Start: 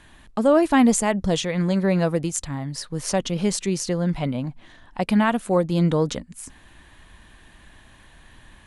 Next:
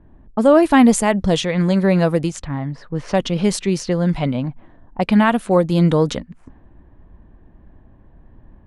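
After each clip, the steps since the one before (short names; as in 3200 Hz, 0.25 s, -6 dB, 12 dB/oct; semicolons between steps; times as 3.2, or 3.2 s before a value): low-pass opened by the level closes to 450 Hz, open at -18.5 dBFS; dynamic EQ 7100 Hz, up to -5 dB, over -46 dBFS, Q 1.4; gain +5 dB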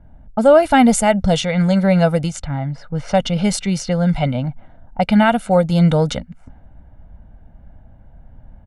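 comb 1.4 ms, depth 72%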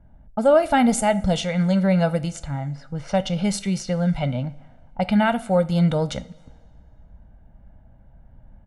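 two-slope reverb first 0.34 s, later 1.8 s, from -18 dB, DRR 11.5 dB; gain -6 dB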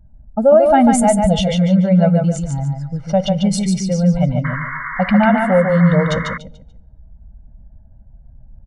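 spectral contrast raised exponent 1.5; feedback echo 0.145 s, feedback 29%, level -4.5 dB; painted sound noise, 4.44–6.38, 940–2200 Hz -32 dBFS; gain +5.5 dB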